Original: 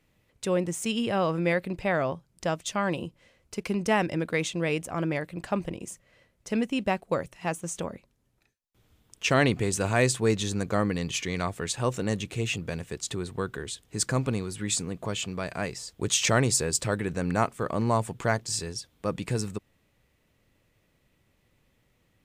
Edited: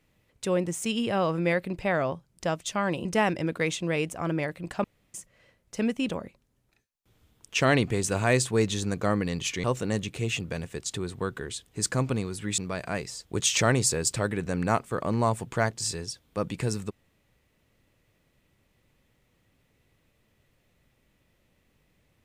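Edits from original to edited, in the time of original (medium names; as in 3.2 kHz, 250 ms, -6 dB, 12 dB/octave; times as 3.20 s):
3.05–3.78 s: delete
5.57–5.87 s: room tone
6.82–7.78 s: delete
11.33–11.81 s: delete
14.75–15.26 s: delete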